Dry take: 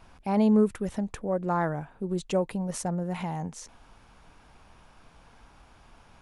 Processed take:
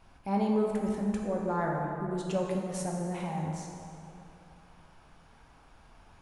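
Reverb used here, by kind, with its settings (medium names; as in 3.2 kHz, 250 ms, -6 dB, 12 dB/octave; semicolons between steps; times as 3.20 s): plate-style reverb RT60 2.8 s, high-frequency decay 0.55×, DRR -1 dB; trim -6 dB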